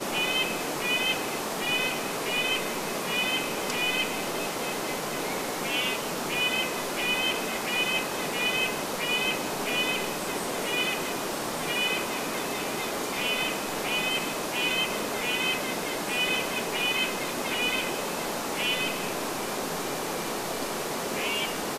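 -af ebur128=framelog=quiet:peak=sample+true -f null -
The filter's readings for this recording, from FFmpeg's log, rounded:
Integrated loudness:
  I:         -27.4 LUFS
  Threshold: -37.4 LUFS
Loudness range:
  LRA:         2.1 LU
  Threshold: -47.4 LUFS
  LRA low:   -28.5 LUFS
  LRA high:  -26.5 LUFS
Sample peak:
  Peak:      -13.5 dBFS
True peak:
  Peak:      -13.5 dBFS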